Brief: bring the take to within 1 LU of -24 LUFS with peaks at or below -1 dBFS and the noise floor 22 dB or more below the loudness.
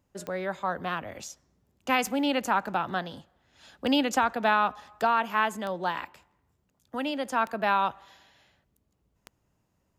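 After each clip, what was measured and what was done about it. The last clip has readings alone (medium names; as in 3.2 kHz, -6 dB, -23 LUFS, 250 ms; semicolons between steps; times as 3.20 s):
clicks found 6; loudness -28.0 LUFS; peak level -12.5 dBFS; loudness target -24.0 LUFS
-> de-click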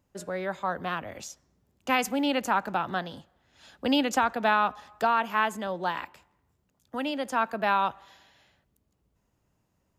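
clicks found 0; loudness -28.0 LUFS; peak level -12.5 dBFS; loudness target -24.0 LUFS
-> trim +4 dB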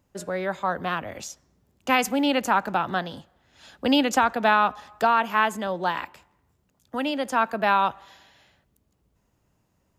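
loudness -24.0 LUFS; peak level -8.5 dBFS; noise floor -70 dBFS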